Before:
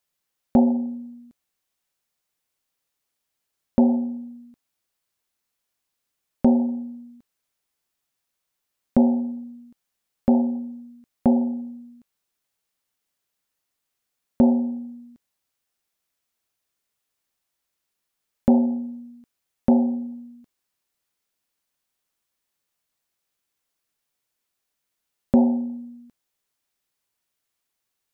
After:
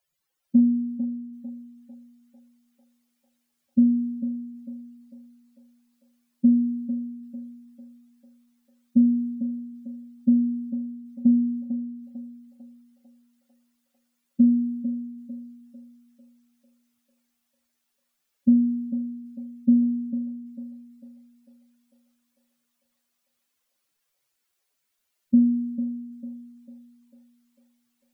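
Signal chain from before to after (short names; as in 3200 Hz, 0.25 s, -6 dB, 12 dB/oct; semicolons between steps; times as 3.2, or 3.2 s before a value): spectral contrast raised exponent 2.9; thinning echo 0.448 s, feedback 81%, high-pass 490 Hz, level -3 dB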